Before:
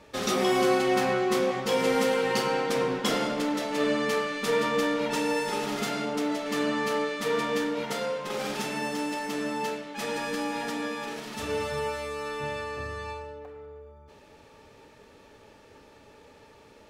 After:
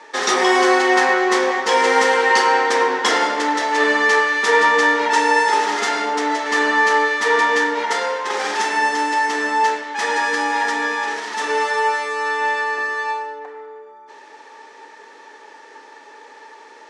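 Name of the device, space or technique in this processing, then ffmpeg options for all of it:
phone speaker on a table: -af "highpass=frequency=340:width=0.5412,highpass=frequency=340:width=1.3066,equalizer=frequency=590:width_type=q:width=4:gain=-7,equalizer=frequency=910:width_type=q:width=4:gain=9,equalizer=frequency=1800:width_type=q:width=4:gain=10,equalizer=frequency=2600:width_type=q:width=4:gain=-3,equalizer=frequency=5900:width_type=q:width=4:gain=3,lowpass=frequency=8700:width=0.5412,lowpass=frequency=8700:width=1.3066,volume=9dB"

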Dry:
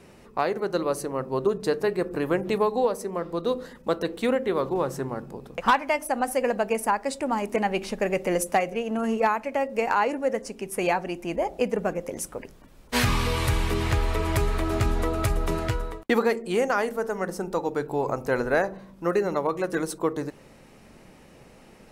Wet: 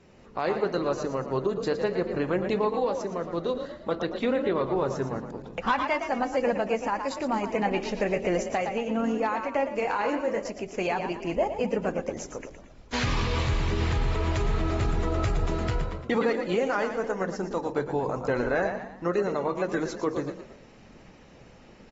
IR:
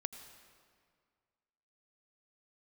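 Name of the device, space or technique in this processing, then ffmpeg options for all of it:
low-bitrate web radio: -filter_complex "[0:a]asettb=1/sr,asplit=3[link_01][link_02][link_03];[link_01]atrim=end=3.634[link_04];[link_02]atrim=start=3.63:end=4.81,asetpts=PTS-STARTPTS,afade=type=in:duration=0.004:curve=qsin,afade=type=out:start_time=1.176:duration=0.004:curve=qsin,lowpass=6000[link_05];[link_03]atrim=start=4.806[link_06];[link_04][link_05]acrossfade=duration=0.004:curve1=hsin:curve2=qsin[link_07];[link_07][link_06]acrossfade=duration=0.004:curve1=qsin:curve2=hsin,lowshelf=frequency=200:gain=3,asplit=3[link_08][link_09][link_10];[link_08]afade=type=out:start_time=9.81:duration=0.02[link_11];[link_09]asplit=2[link_12][link_13];[link_13]adelay=24,volume=-6dB[link_14];[link_12][link_14]amix=inputs=2:normalize=0,afade=type=in:start_time=9.81:duration=0.02,afade=type=out:start_time=10.45:duration=0.02[link_15];[link_10]afade=type=in:start_time=10.45:duration=0.02[link_16];[link_11][link_15][link_16]amix=inputs=3:normalize=0,asplit=5[link_17][link_18][link_19][link_20][link_21];[link_18]adelay=114,afreqshift=45,volume=-10dB[link_22];[link_19]adelay=228,afreqshift=90,volume=-17.5dB[link_23];[link_20]adelay=342,afreqshift=135,volume=-25.1dB[link_24];[link_21]adelay=456,afreqshift=180,volume=-32.6dB[link_25];[link_17][link_22][link_23][link_24][link_25]amix=inputs=5:normalize=0,dynaudnorm=framelen=100:gausssize=5:maxgain=5.5dB,alimiter=limit=-10.5dB:level=0:latency=1:release=23,volume=-7dB" -ar 44100 -c:a aac -b:a 24k

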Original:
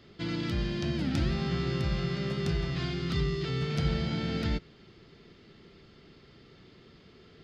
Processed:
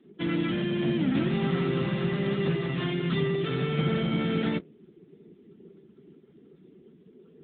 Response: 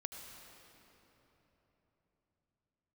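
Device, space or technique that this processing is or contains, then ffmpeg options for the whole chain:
mobile call with aggressive noise cancelling: -af "highpass=frequency=160:width=0.5412,highpass=frequency=160:width=1.3066,afftdn=noise_reduction=18:noise_floor=-49,volume=7dB" -ar 8000 -c:a libopencore_amrnb -b:a 10200

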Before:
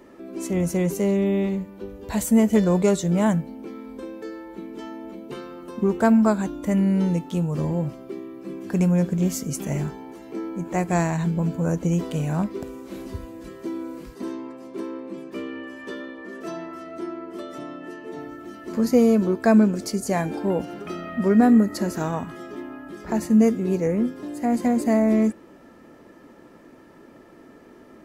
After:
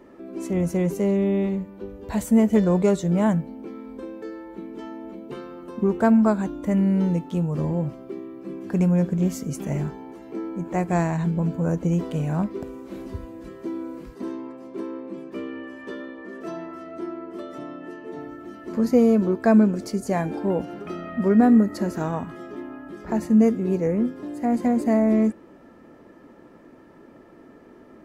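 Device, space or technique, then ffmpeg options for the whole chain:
behind a face mask: -af "highshelf=frequency=2800:gain=-8"

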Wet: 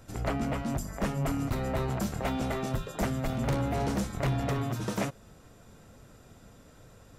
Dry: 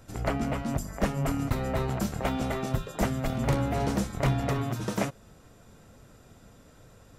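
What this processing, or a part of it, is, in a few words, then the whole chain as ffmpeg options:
saturation between pre-emphasis and de-emphasis: -af "highshelf=frequency=11000:gain=7,asoftclip=type=tanh:threshold=-22dB,highshelf=frequency=11000:gain=-7"

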